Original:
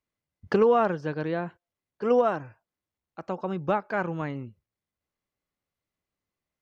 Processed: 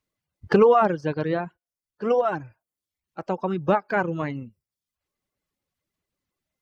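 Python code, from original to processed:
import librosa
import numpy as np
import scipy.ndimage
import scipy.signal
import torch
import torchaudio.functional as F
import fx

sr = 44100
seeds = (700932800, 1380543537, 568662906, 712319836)

y = fx.spec_quant(x, sr, step_db=15)
y = fx.dereverb_blind(y, sr, rt60_s=0.61)
y = fx.comb_fb(y, sr, f0_hz=740.0, decay_s=0.19, harmonics='all', damping=0.0, mix_pct=40, at=(1.45, 2.33))
y = y * librosa.db_to_amplitude(5.5)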